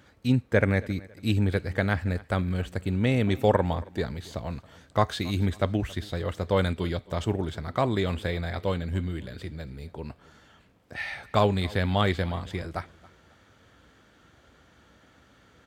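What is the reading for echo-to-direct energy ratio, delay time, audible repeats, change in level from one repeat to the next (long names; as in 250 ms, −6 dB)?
−21.5 dB, 275 ms, 2, −9.5 dB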